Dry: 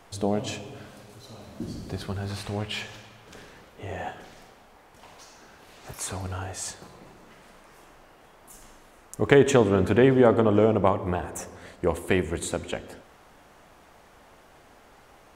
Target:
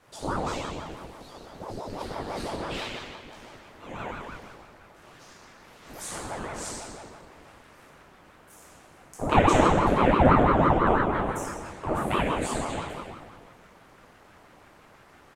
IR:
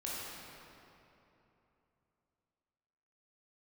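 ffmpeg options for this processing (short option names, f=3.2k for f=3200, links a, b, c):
-filter_complex "[0:a]asplit=2[a][b];[b]adelay=26,volume=-13.5dB[c];[a][c]amix=inputs=2:normalize=0[d];[1:a]atrim=start_sample=2205,asetrate=79380,aresample=44100[e];[d][e]afir=irnorm=-1:irlink=0,aeval=exprs='val(0)*sin(2*PI*450*n/s+450*0.75/6*sin(2*PI*6*n/s))':c=same,volume=4.5dB"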